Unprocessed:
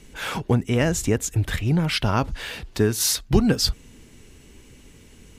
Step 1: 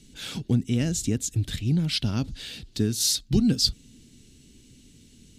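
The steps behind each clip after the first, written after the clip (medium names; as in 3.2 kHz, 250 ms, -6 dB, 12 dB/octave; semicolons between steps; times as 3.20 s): ten-band graphic EQ 125 Hz +5 dB, 250 Hz +8 dB, 500 Hz -4 dB, 1 kHz -11 dB, 2 kHz -4 dB, 4 kHz +10 dB, 8 kHz +5 dB; trim -8.5 dB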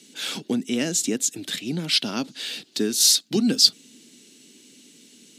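Bessel high-pass 330 Hz, order 6; trim +7 dB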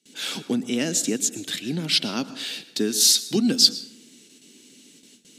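gate with hold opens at -41 dBFS; on a send at -14.5 dB: reverberation RT60 0.70 s, pre-delay 103 ms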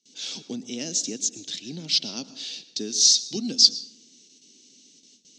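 FFT filter 700 Hz 0 dB, 1.5 kHz -8 dB, 6.1 kHz +13 dB, 11 kHz -23 dB; trim -9 dB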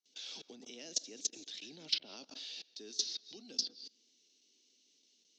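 level held to a coarse grid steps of 23 dB; three-band isolator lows -17 dB, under 350 Hz, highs -18 dB, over 6.1 kHz; low-pass that closes with the level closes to 1.9 kHz, closed at -26 dBFS; trim +1.5 dB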